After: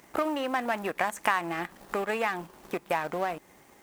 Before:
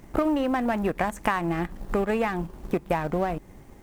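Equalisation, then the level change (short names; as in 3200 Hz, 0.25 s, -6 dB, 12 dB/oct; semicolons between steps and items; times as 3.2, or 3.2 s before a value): HPF 1000 Hz 6 dB/oct; +2.5 dB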